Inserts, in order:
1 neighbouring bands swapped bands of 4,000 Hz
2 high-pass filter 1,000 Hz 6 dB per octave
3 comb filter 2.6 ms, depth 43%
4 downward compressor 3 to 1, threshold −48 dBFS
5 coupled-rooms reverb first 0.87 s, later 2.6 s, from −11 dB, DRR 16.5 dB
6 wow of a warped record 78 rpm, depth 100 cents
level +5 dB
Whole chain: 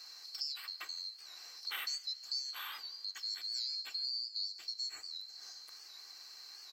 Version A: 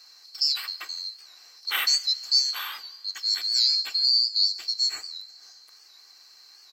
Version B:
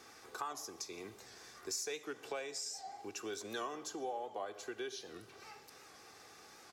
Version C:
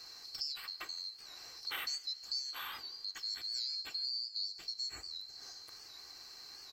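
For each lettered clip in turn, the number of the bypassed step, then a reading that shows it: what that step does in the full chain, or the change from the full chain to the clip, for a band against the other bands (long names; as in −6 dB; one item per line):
4, average gain reduction 8.0 dB
1, 4 kHz band −17.5 dB
2, 1 kHz band +2.0 dB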